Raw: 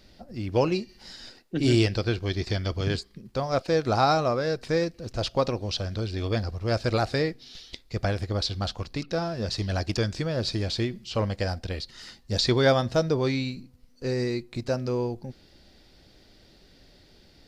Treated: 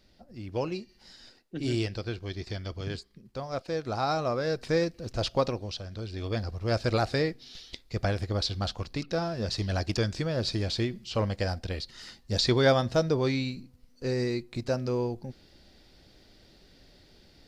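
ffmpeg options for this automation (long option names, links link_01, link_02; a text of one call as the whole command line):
ffmpeg -i in.wav -af "volume=7dB,afade=type=in:start_time=4:duration=0.62:silence=0.446684,afade=type=out:start_time=5.35:duration=0.48:silence=0.375837,afade=type=in:start_time=5.83:duration=0.92:silence=0.398107" out.wav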